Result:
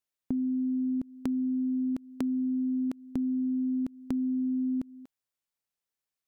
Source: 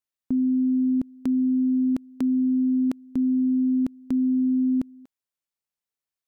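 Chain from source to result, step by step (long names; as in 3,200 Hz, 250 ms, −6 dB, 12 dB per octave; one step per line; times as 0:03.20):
downward compressor, threshold −28 dBFS, peak gain reduction 7.5 dB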